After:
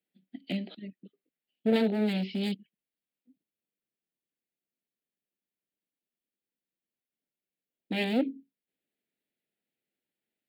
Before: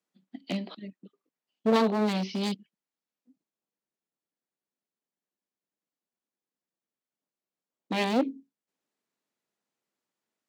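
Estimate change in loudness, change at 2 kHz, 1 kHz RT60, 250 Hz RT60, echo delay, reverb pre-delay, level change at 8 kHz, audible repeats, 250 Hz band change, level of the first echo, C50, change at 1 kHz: -1.5 dB, -1.5 dB, none, none, none, none, under -10 dB, none, -0.5 dB, none, none, -10.5 dB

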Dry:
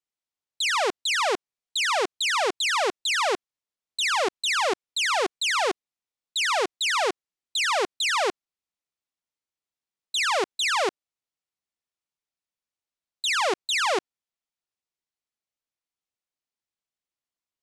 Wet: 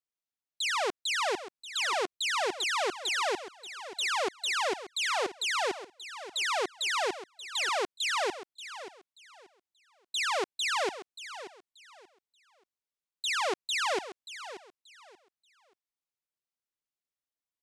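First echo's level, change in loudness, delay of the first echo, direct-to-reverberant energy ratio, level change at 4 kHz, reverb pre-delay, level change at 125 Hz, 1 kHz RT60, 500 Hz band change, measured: -13.0 dB, -6.0 dB, 0.582 s, none, -6.0 dB, none, n/a, none, -6.0 dB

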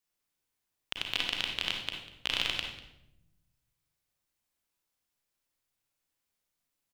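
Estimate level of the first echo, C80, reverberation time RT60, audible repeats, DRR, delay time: -18.0 dB, 7.0 dB, 0.85 s, 1, 1.0 dB, 0.195 s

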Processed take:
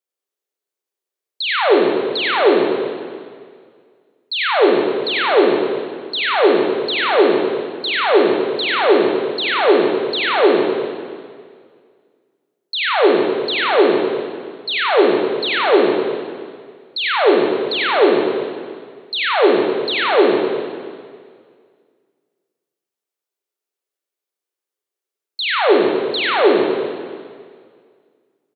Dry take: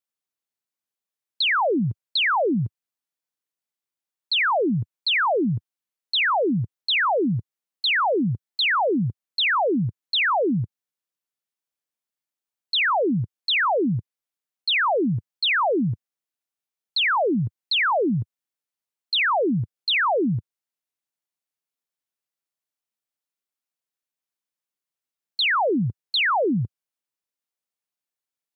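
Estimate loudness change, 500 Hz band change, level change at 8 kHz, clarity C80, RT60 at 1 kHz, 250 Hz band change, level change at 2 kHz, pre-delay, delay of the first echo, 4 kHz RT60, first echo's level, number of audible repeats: +5.5 dB, +12.5 dB, n/a, 1.0 dB, 1.9 s, +5.0 dB, +3.0 dB, 27 ms, 97 ms, 1.9 s, -6.0 dB, 1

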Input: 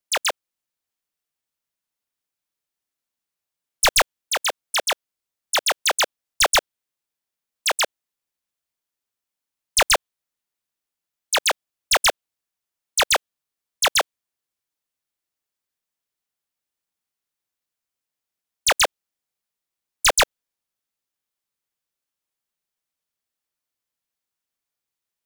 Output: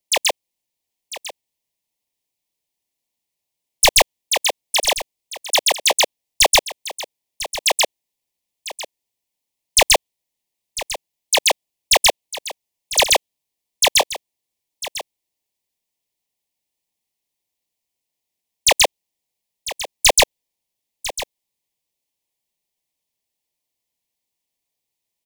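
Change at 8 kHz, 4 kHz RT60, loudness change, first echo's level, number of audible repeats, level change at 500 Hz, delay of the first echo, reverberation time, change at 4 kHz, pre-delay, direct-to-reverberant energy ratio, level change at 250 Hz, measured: +5.0 dB, none, +4.0 dB, -14.0 dB, 1, +5.0 dB, 0.999 s, none, +5.0 dB, none, none, +5.0 dB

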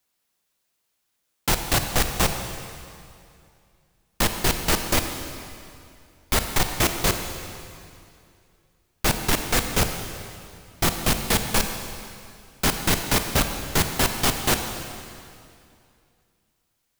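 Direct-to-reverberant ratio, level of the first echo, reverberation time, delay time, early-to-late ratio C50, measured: 6.0 dB, none, 2.5 s, none, 6.5 dB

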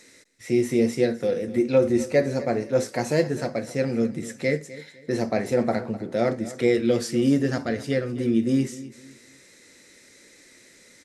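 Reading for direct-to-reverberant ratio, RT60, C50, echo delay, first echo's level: none, none, none, 0.254 s, -16.5 dB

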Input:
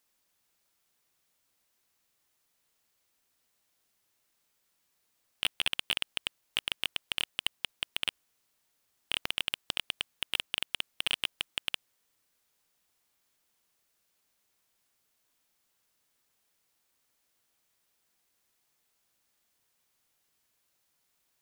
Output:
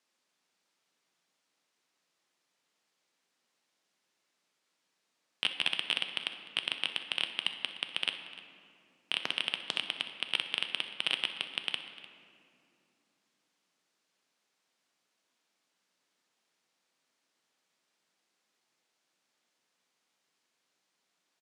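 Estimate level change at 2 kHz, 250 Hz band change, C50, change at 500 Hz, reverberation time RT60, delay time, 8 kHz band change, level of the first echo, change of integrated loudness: +0.5 dB, +1.0 dB, 7.5 dB, +1.0 dB, 2.6 s, 63 ms, -7.5 dB, -17.0 dB, +0.5 dB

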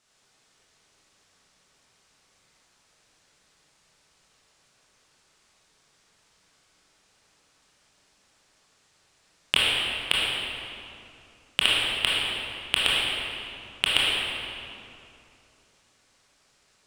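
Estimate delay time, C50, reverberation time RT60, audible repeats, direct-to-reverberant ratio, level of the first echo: none, -3.5 dB, 2.7 s, none, -7.0 dB, none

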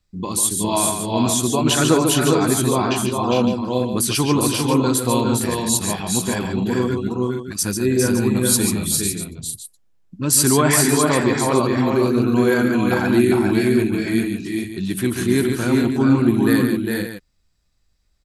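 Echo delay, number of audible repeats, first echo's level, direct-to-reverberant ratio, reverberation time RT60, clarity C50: 0.142 s, 4, -6.5 dB, none, none, none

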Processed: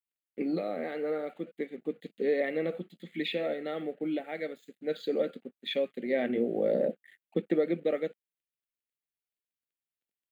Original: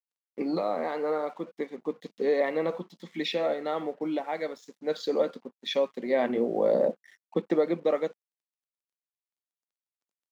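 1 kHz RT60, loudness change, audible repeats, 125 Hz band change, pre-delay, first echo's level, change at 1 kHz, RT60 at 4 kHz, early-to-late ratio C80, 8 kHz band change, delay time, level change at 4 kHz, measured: none, -3.0 dB, none, -0.5 dB, none, none, -9.5 dB, none, none, n/a, none, -3.0 dB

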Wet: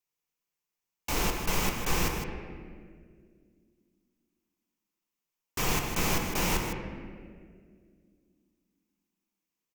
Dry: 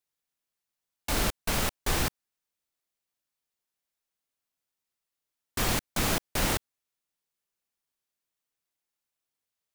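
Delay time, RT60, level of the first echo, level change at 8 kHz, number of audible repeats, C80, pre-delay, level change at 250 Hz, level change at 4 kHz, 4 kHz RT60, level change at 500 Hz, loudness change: 0.157 s, 2.0 s, -9.0 dB, -1.0 dB, 1, 4.5 dB, 4 ms, +1.0 dB, -2.0 dB, 1.3 s, 0.0 dB, -1.5 dB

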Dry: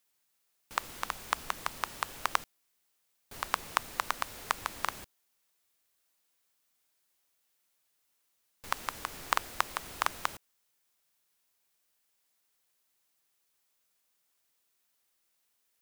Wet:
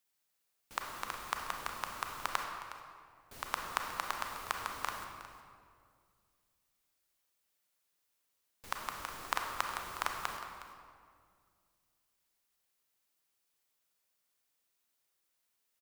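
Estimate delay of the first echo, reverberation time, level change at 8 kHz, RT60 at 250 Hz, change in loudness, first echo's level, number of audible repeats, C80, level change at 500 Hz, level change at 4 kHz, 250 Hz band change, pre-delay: 0.363 s, 2.1 s, -4.5 dB, 2.6 s, -4.0 dB, -15.0 dB, 1, 4.5 dB, -3.0 dB, -4.0 dB, -3.0 dB, 28 ms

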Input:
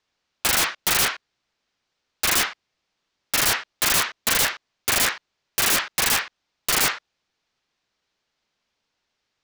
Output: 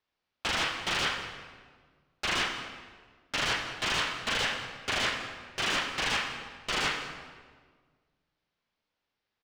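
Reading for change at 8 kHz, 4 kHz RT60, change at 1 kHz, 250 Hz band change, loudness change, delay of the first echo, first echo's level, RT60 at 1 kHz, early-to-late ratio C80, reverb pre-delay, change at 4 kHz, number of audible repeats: -17.0 dB, 1.1 s, -5.5 dB, -5.0 dB, -9.5 dB, 0.202 s, -18.0 dB, 1.5 s, 7.0 dB, 24 ms, -6.0 dB, 1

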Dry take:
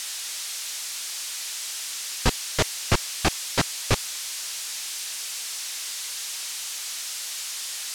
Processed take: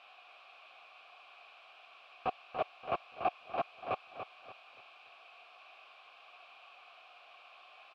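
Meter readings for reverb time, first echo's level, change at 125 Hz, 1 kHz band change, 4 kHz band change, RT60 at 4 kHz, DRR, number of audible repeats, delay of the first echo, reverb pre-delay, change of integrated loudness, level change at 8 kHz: none, -8.5 dB, -27.0 dB, -4.5 dB, -26.5 dB, none, none, 3, 0.288 s, none, -11.5 dB, under -40 dB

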